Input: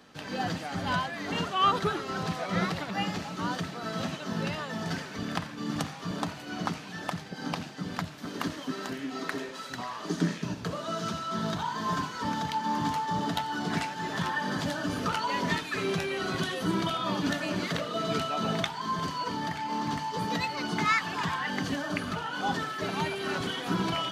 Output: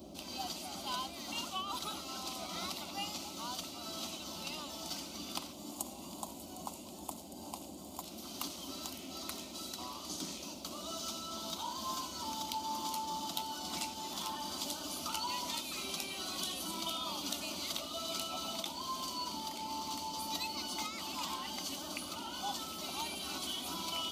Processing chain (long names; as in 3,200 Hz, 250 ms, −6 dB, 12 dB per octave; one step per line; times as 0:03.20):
first-order pre-emphasis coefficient 0.97
gain on a spectral selection 0:05.53–0:08.03, 1,100–6,500 Hz −11 dB
parametric band 8,100 Hz −5.5 dB 2.1 octaves
compressor whose output falls as the input rises −42 dBFS, ratio −1
noise in a band 68–570 Hz −56 dBFS
phaser with its sweep stopped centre 460 Hz, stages 6
delay with a high-pass on its return 757 ms, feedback 75%, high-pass 2,000 Hz, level −15.5 dB
level +9.5 dB